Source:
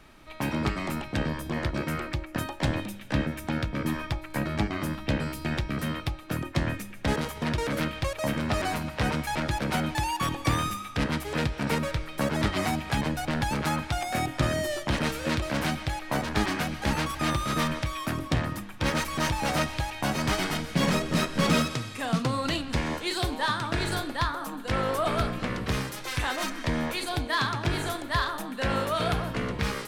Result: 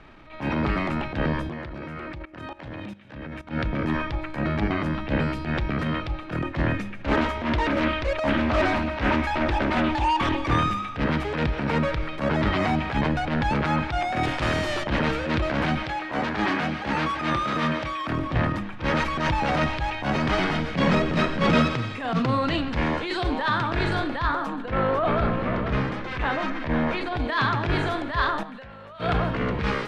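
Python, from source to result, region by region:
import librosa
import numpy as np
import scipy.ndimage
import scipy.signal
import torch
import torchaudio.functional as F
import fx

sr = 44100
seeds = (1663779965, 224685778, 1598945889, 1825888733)

y = fx.chain(x, sr, fx.highpass(hz=42.0, slope=12),
    fx.level_steps(step_db=20), at=(1.49, 3.51))
y = fx.chain(y, sr, fx.comb(ms=3.2, depth=0.65),
    fx.doppler_dist(depth_ms=0.51), at=(7.04, 10.51))
y = fx.chain(y, sr, fx.low_shelf(hz=140.0, db=7.0),
    fx.spectral_comp(ratio=2.0), at=(14.23, 14.84))
y = fx.chain(y, sr, fx.highpass(hz=220.0, slope=6),
    fx.doubler(ms=25.0, db=-12), at=(15.83, 18.07))
y = fx.chain(y, sr, fx.lowpass(hz=2400.0, slope=6),
    fx.echo_single(ms=484, db=-10.5), at=(24.62, 27.17))
y = fx.chain(y, sr, fx.peak_eq(hz=320.0, db=-14.0, octaves=0.39),
    fx.level_steps(step_db=24), at=(28.43, 29.0))
y = fx.transient(y, sr, attack_db=-12, sustain_db=4)
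y = scipy.signal.sosfilt(scipy.signal.butter(2, 2900.0, 'lowpass', fs=sr, output='sos'), y)
y = y * librosa.db_to_amplitude(5.5)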